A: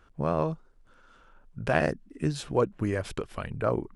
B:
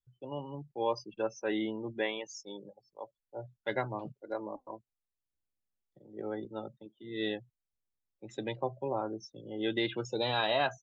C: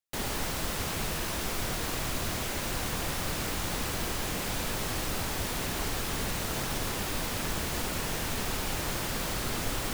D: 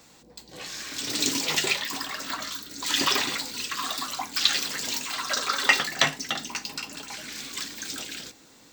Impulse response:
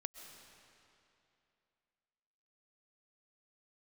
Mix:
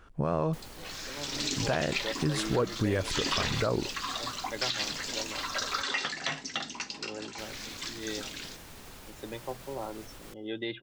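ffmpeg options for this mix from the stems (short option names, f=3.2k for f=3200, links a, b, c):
-filter_complex "[0:a]acontrast=36,volume=-1dB[a];[1:a]adelay=850,volume=-4.5dB,asplit=2[b][c];[c]volume=-20.5dB[d];[2:a]alimiter=limit=-23.5dB:level=0:latency=1:release=92,adelay=400,volume=-15dB,asplit=3[e][f][g];[e]atrim=end=5.82,asetpts=PTS-STARTPTS,afade=t=out:st=5.816:d=0.004:c=hsin[h];[f]atrim=start=5.82:end=7.38,asetpts=PTS-STARTPTS,volume=0[i];[g]atrim=start=7.38,asetpts=PTS-STARTPTS,afade=t=in:d=0.004:c=hsin[j];[h][i][j]concat=n=3:v=0:a=1,asplit=2[k][l];[l]volume=-17.5dB[m];[3:a]lowpass=f=6.9k:w=0.5412,lowpass=f=6.9k:w=1.3066,adelay=250,volume=-4dB[n];[4:a]atrim=start_sample=2205[o];[d][m]amix=inputs=2:normalize=0[p];[p][o]afir=irnorm=-1:irlink=0[q];[a][b][k][n][q]amix=inputs=5:normalize=0,alimiter=limit=-17.5dB:level=0:latency=1:release=133"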